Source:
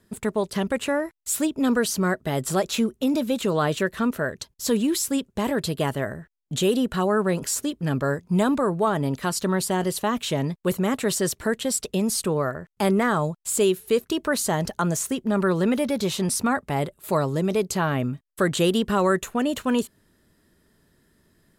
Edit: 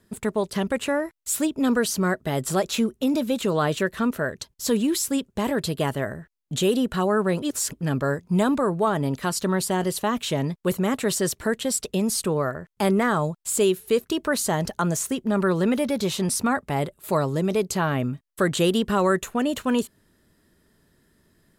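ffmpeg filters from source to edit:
ffmpeg -i in.wav -filter_complex "[0:a]asplit=3[link_01][link_02][link_03];[link_01]atrim=end=7.422[link_04];[link_02]atrim=start=7.418:end=7.732,asetpts=PTS-STARTPTS,areverse[link_05];[link_03]atrim=start=7.728[link_06];[link_04][link_05]acrossfade=duration=0.004:curve1=hsin:curve2=hsin[link_07];[link_07][link_06]acrossfade=duration=0.004:curve1=hsin:curve2=hsin" out.wav

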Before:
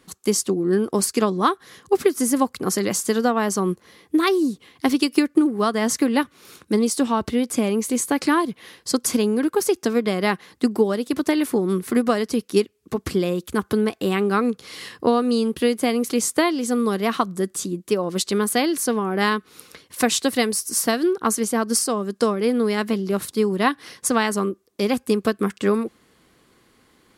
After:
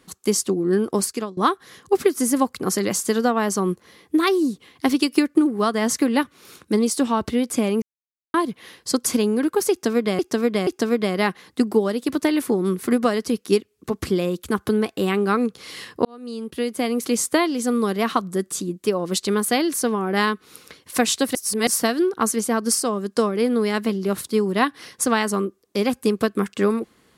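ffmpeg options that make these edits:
ffmpeg -i in.wav -filter_complex "[0:a]asplit=9[link_01][link_02][link_03][link_04][link_05][link_06][link_07][link_08][link_09];[link_01]atrim=end=1.37,asetpts=PTS-STARTPTS,afade=type=out:start_time=0.95:duration=0.42:silence=0.0794328[link_10];[link_02]atrim=start=1.37:end=7.82,asetpts=PTS-STARTPTS,afade=type=in:duration=0.004:curve=hsin:silence=0.0794328,afade=type=out:start_time=6.446:duration=0.004:curve=hsin[link_11];[link_03]atrim=start=7.82:end=8.34,asetpts=PTS-STARTPTS,volume=0[link_12];[link_04]atrim=start=8.34:end=10.192,asetpts=PTS-STARTPTS,afade=type=in:duration=0.004:curve=hsin[link_13];[link_05]atrim=start=9.708:end=10.192[link_14];[link_06]atrim=start=9.708:end=15.09,asetpts=PTS-STARTPTS,afade=type=out:start_time=5.378:duration=0.004:curve=hsin[link_15];[link_07]atrim=start=15.09:end=20.392,asetpts=PTS-STARTPTS,afade=type=in:duration=1.04[link_16];[link_08]atrim=start=20.388:end=20.712,asetpts=PTS-STARTPTS,areverse[link_17];[link_09]atrim=start=20.708[link_18];[link_10][link_11][link_12][link_13]concat=n=4:v=0:a=1[link_19];[link_19][link_14]acrossfade=duration=0.004:curve1=hsin:curve2=hsin[link_20];[link_15][link_16]concat=n=2:v=0:a=1[link_21];[link_20][link_21]acrossfade=duration=0.004:curve1=hsin:curve2=hsin[link_22];[link_22][link_17]acrossfade=duration=0.004:curve1=hsin:curve2=hsin[link_23];[link_23][link_18]acrossfade=duration=0.004:curve1=hsin:curve2=hsin" out.wav

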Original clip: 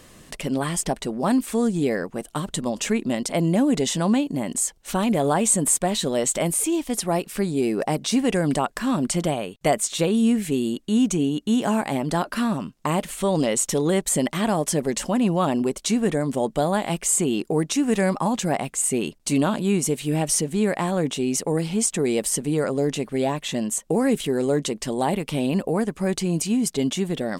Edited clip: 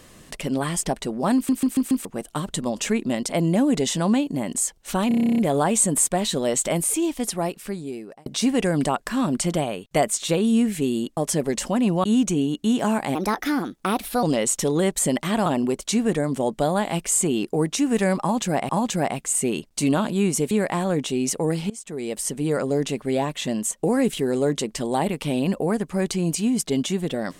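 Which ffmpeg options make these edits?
ffmpeg -i in.wav -filter_complex "[0:a]asplit=25[link_01][link_02][link_03][link_04][link_05][link_06][link_07][link_08][link_09][link_10][link_11][link_12][link_13][link_14][link_15][link_16][link_17][link_18][link_19][link_20][link_21][link_22][link_23][link_24][link_25];[link_01]atrim=end=1.492[link_26];[link_02]atrim=start=1.348:end=1.492[link_27];[link_03]atrim=start=1.348:end=1.492[link_28];[link_04]atrim=start=1.348:end=1.492[link_29];[link_05]atrim=start=1.348:end=1.492[link_30];[link_06]atrim=start=2.048:end=5.112[link_31];[link_07]atrim=start=5.078:end=5.112[link_32];[link_08]atrim=start=5.078:end=5.112[link_33];[link_09]atrim=start=5.078:end=5.112[link_34];[link_10]atrim=start=5.078:end=5.112[link_35];[link_11]atrim=start=5.078:end=5.112[link_36];[link_12]atrim=start=5.078:end=5.112[link_37];[link_13]atrim=start=5.078:end=5.112[link_38];[link_14]atrim=start=5.078:end=5.112[link_39];[link_15]atrim=start=5.078:end=5.112[link_40];[link_16]atrim=start=5.078:end=7.96,asetpts=PTS-STARTPTS,afade=type=out:start_time=1.782:duration=1.1[link_41];[link_17]atrim=start=7.96:end=10.872,asetpts=PTS-STARTPTS,afade=type=in:duration=0.004:curve=hsin[link_42];[link_18]atrim=start=14.558:end=15.432[link_43];[link_19]atrim=start=10.868:end=11.984[link_44];[link_20]atrim=start=11.98:end=13.33,asetpts=PTS-STARTPTS,asetrate=55125,aresample=44100[link_45];[link_21]atrim=start=13.326:end=14.562[link_46];[link_22]atrim=start=15.428:end=18.662[link_47];[link_23]atrim=start=18.178:end=20.002[link_48];[link_24]atrim=start=20.578:end=21.77,asetpts=PTS-STARTPTS,afade=type=out:start_time=1.188:duration=0.004:curve=hsin:silence=0.0749894[link_49];[link_25]atrim=start=21.77,asetpts=PTS-STARTPTS,afade=type=in:duration=0.85:silence=0.0749894[link_50];[link_26][link_27]acrossfade=duration=0.004:curve1=hsin:curve2=hsin[link_51];[link_51][link_28]acrossfade=duration=0.004:curve1=hsin:curve2=hsin[link_52];[link_52][link_29]acrossfade=duration=0.004:curve1=hsin:curve2=hsin[link_53];[link_53][link_30]acrossfade=duration=0.004:curve1=hsin:curve2=hsin[link_54];[link_54][link_31]acrossfade=duration=0.004:curve1=hsin:curve2=hsin[link_55];[link_55][link_32]acrossfade=duration=0.004:curve1=hsin:curve2=hsin[link_56];[link_56][link_33]acrossfade=duration=0.004:curve1=hsin:curve2=hsin[link_57];[link_57][link_34]acrossfade=duration=0.004:curve1=hsin:curve2=hsin[link_58];[link_58][link_35]acrossfade=duration=0.004:curve1=hsin:curve2=hsin[link_59];[link_59][link_36]acrossfade=duration=0.004:curve1=hsin:curve2=hsin[link_60];[link_60][link_37]acrossfade=duration=0.004:curve1=hsin:curve2=hsin[link_61];[link_61][link_38]acrossfade=duration=0.004:curve1=hsin:curve2=hsin[link_62];[link_62][link_39]acrossfade=duration=0.004:curve1=hsin:curve2=hsin[link_63];[link_63][link_40]acrossfade=duration=0.004:curve1=hsin:curve2=hsin[link_64];[link_41][link_42]concat=n=2:v=0:a=1[link_65];[link_64][link_65]acrossfade=duration=0.004:curve1=hsin:curve2=hsin[link_66];[link_66][link_43]acrossfade=duration=0.004:curve1=hsin:curve2=hsin[link_67];[link_67][link_44]acrossfade=duration=0.004:curve1=hsin:curve2=hsin[link_68];[link_68][link_45]acrossfade=duration=0.004:curve1=hsin:curve2=hsin[link_69];[link_69][link_46]acrossfade=duration=0.004:curve1=hsin:curve2=hsin[link_70];[link_70][link_47]acrossfade=duration=0.004:curve1=hsin:curve2=hsin[link_71];[link_71][link_48]acrossfade=duration=0.004:curve1=hsin:curve2=hsin[link_72];[link_49][link_50]concat=n=2:v=0:a=1[link_73];[link_72][link_73]acrossfade=duration=0.004:curve1=hsin:curve2=hsin" out.wav

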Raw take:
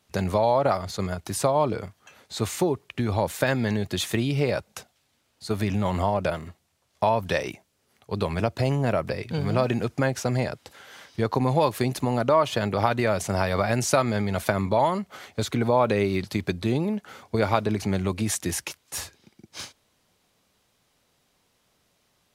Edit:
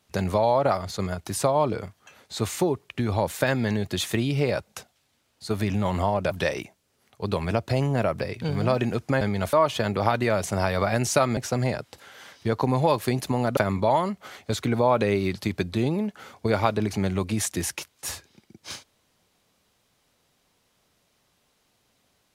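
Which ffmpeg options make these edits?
ffmpeg -i in.wav -filter_complex "[0:a]asplit=6[link_01][link_02][link_03][link_04][link_05][link_06];[link_01]atrim=end=6.312[link_07];[link_02]atrim=start=7.198:end=10.102[link_08];[link_03]atrim=start=14.138:end=14.462[link_09];[link_04]atrim=start=12.298:end=14.142[link_10];[link_05]atrim=start=10.098:end=12.302[link_11];[link_06]atrim=start=14.458[link_12];[link_07][link_08]acrossfade=duration=0.004:curve1=hsin:curve2=hsin[link_13];[link_13][link_09]acrossfade=duration=0.004:curve1=hsin:curve2=hsin[link_14];[link_14][link_10]acrossfade=duration=0.004:curve1=hsin:curve2=hsin[link_15];[link_15][link_11]acrossfade=duration=0.004:curve1=hsin:curve2=hsin[link_16];[link_16][link_12]acrossfade=duration=0.004:curve1=hsin:curve2=hsin" out.wav

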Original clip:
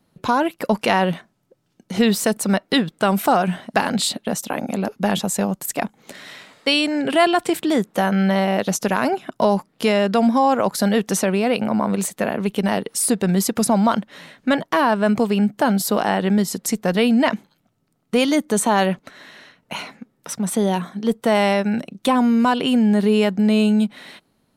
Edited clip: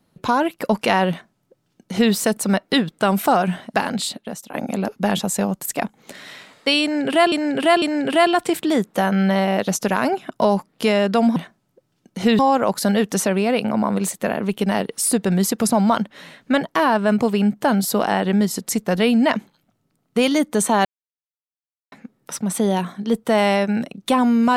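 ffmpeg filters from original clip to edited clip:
ffmpeg -i in.wav -filter_complex "[0:a]asplit=8[link_01][link_02][link_03][link_04][link_05][link_06][link_07][link_08];[link_01]atrim=end=4.54,asetpts=PTS-STARTPTS,afade=type=out:start_time=3.6:duration=0.94:silence=0.237137[link_09];[link_02]atrim=start=4.54:end=7.322,asetpts=PTS-STARTPTS,afade=type=in:duration=0.004:curve=hsin:silence=0.237137[link_10];[link_03]atrim=start=6.818:end=7.322[link_11];[link_04]atrim=start=6.818:end=10.362[link_12];[link_05]atrim=start=1.098:end=2.132[link_13];[link_06]atrim=start=10.358:end=18.82,asetpts=PTS-STARTPTS,afade=type=out:start_time=8.458:duration=0.004:curve=hsin[link_14];[link_07]atrim=start=18.82:end=19.89,asetpts=PTS-STARTPTS,volume=0[link_15];[link_08]atrim=start=19.89,asetpts=PTS-STARTPTS,afade=type=in:duration=0.004:curve=hsin[link_16];[link_09][link_10]concat=n=2:v=0:a=1[link_17];[link_17][link_11]acrossfade=duration=0.004:curve1=hsin:curve2=hsin[link_18];[link_18][link_12]acrossfade=duration=0.004:curve1=hsin:curve2=hsin[link_19];[link_19][link_13]acrossfade=duration=0.004:curve1=hsin:curve2=hsin[link_20];[link_14][link_15][link_16]concat=n=3:v=0:a=1[link_21];[link_20][link_21]acrossfade=duration=0.004:curve1=hsin:curve2=hsin" out.wav

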